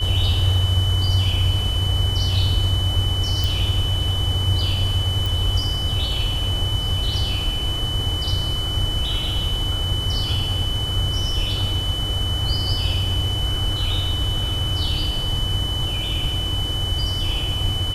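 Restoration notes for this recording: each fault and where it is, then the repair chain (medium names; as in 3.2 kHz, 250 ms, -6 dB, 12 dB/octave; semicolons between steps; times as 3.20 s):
whine 3 kHz -25 dBFS
3.44 s: pop
5.26 s: pop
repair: de-click; band-stop 3 kHz, Q 30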